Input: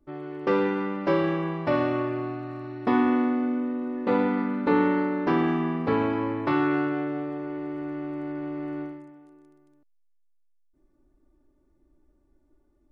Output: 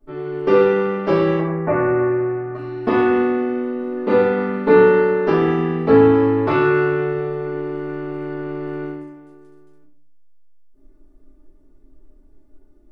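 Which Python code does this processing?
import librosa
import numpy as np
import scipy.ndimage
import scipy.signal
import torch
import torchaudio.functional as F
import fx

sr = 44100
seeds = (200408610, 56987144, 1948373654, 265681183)

y = fx.steep_lowpass(x, sr, hz=2200.0, slope=48, at=(1.39, 2.55))
y = fx.room_shoebox(y, sr, seeds[0], volume_m3=38.0, walls='mixed', distance_m=1.5)
y = y * librosa.db_to_amplitude(-1.0)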